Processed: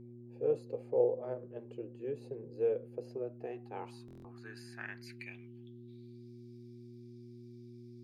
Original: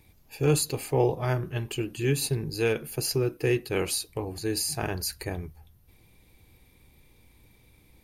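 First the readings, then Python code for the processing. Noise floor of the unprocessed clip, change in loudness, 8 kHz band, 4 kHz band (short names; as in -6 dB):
-60 dBFS, -10.0 dB, under -30 dB, -27.0 dB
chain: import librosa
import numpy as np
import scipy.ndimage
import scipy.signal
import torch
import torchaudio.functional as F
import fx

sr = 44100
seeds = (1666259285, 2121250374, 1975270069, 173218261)

y = fx.peak_eq(x, sr, hz=11000.0, db=-3.5, octaves=0.37)
y = fx.filter_sweep_bandpass(y, sr, from_hz=510.0, to_hz=5100.0, start_s=3.07, end_s=6.3, q=7.3)
y = fx.dmg_buzz(y, sr, base_hz=120.0, harmonics=3, level_db=-53.0, tilt_db=-1, odd_only=False)
y = fx.buffer_glitch(y, sr, at_s=(4.06,), block=1024, repeats=7)
y = y * 10.0 ** (1.5 / 20.0)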